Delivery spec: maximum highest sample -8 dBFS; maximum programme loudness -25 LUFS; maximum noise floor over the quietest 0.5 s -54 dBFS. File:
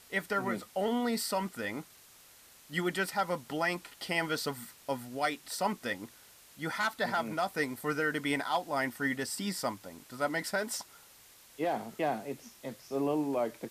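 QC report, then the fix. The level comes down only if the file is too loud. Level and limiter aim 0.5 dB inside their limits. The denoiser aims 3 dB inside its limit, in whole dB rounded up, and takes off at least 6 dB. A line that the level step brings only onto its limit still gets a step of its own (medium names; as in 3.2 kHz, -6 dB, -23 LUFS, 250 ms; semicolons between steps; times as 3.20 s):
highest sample -16.5 dBFS: pass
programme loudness -33.5 LUFS: pass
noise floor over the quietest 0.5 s -58 dBFS: pass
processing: none needed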